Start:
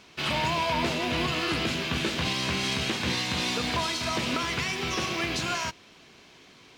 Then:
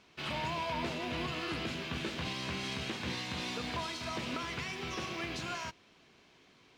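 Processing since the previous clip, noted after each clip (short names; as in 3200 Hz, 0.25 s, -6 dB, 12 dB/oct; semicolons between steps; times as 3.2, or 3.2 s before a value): high shelf 4400 Hz -5.5 dB; gain -8.5 dB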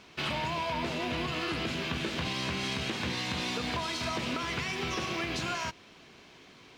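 compressor, threshold -38 dBFS, peak gain reduction 6.5 dB; gain +8.5 dB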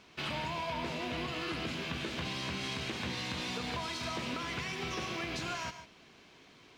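non-linear reverb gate 0.17 s rising, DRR 10 dB; gain -4.5 dB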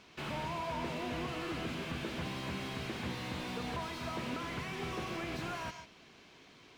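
slew limiter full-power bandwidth 18 Hz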